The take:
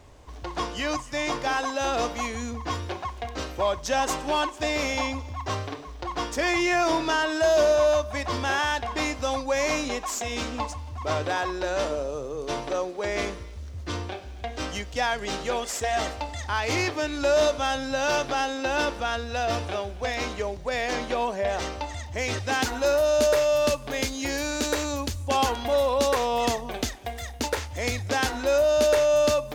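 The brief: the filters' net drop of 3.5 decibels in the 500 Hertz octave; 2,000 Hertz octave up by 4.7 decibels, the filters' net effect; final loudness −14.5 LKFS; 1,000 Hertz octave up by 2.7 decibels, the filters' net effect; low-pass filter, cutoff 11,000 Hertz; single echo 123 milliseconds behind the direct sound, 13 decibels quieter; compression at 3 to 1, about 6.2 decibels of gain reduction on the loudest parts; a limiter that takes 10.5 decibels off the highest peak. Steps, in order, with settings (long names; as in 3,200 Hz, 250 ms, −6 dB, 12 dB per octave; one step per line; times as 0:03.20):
low-pass filter 11,000 Hz
parametric band 500 Hz −6.5 dB
parametric band 1,000 Hz +4.5 dB
parametric band 2,000 Hz +5 dB
downward compressor 3 to 1, threshold −26 dBFS
brickwall limiter −22.5 dBFS
single-tap delay 123 ms −13 dB
level +17.5 dB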